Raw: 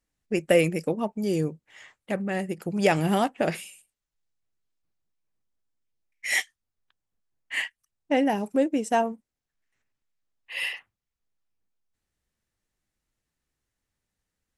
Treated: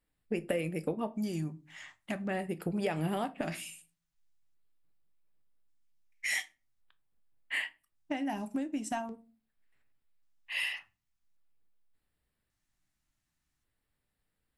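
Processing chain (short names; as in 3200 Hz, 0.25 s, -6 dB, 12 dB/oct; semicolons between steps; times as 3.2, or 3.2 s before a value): compressor 6:1, threshold -30 dBFS, peak gain reduction 14.5 dB; LFO notch square 0.44 Hz 470–6200 Hz; shoebox room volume 190 m³, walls furnished, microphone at 0.4 m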